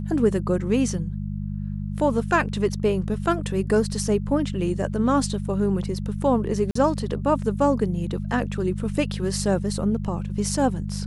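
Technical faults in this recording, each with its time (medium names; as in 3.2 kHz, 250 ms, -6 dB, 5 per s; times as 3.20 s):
hum 50 Hz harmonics 4 -29 dBFS
6.71–6.75 s: dropout 44 ms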